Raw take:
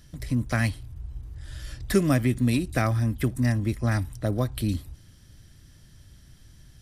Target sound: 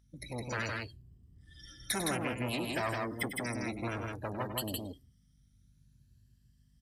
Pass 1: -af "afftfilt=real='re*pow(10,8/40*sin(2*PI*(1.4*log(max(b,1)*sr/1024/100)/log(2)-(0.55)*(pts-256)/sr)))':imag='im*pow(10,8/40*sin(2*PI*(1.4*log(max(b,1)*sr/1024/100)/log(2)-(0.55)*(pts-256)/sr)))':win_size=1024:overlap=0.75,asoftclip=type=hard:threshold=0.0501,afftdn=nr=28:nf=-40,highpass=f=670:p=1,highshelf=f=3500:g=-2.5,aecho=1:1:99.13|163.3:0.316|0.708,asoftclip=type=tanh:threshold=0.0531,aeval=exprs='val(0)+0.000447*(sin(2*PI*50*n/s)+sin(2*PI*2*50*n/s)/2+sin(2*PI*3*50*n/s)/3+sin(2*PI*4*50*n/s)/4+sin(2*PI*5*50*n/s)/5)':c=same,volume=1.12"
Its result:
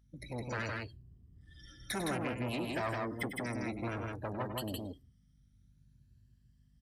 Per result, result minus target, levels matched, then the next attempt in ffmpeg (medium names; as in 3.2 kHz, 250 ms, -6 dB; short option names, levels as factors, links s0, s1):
saturation: distortion +12 dB; 8 kHz band -6.0 dB
-af "afftfilt=real='re*pow(10,8/40*sin(2*PI*(1.4*log(max(b,1)*sr/1024/100)/log(2)-(0.55)*(pts-256)/sr)))':imag='im*pow(10,8/40*sin(2*PI*(1.4*log(max(b,1)*sr/1024/100)/log(2)-(0.55)*(pts-256)/sr)))':win_size=1024:overlap=0.75,asoftclip=type=hard:threshold=0.0501,afftdn=nr=28:nf=-40,highpass=f=670:p=1,highshelf=f=3500:g=-2.5,aecho=1:1:99.13|163.3:0.316|0.708,asoftclip=type=tanh:threshold=0.141,aeval=exprs='val(0)+0.000447*(sin(2*PI*50*n/s)+sin(2*PI*2*50*n/s)/2+sin(2*PI*3*50*n/s)/3+sin(2*PI*4*50*n/s)/4+sin(2*PI*5*50*n/s)/5)':c=same,volume=1.12"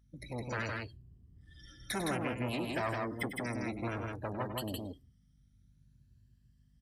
8 kHz band -6.0 dB
-af "afftfilt=real='re*pow(10,8/40*sin(2*PI*(1.4*log(max(b,1)*sr/1024/100)/log(2)-(0.55)*(pts-256)/sr)))':imag='im*pow(10,8/40*sin(2*PI*(1.4*log(max(b,1)*sr/1024/100)/log(2)-(0.55)*(pts-256)/sr)))':win_size=1024:overlap=0.75,asoftclip=type=hard:threshold=0.0501,afftdn=nr=28:nf=-40,highpass=f=670:p=1,highshelf=f=3500:g=6,aecho=1:1:99.13|163.3:0.316|0.708,asoftclip=type=tanh:threshold=0.141,aeval=exprs='val(0)+0.000447*(sin(2*PI*50*n/s)+sin(2*PI*2*50*n/s)/2+sin(2*PI*3*50*n/s)/3+sin(2*PI*4*50*n/s)/4+sin(2*PI*5*50*n/s)/5)':c=same,volume=1.12"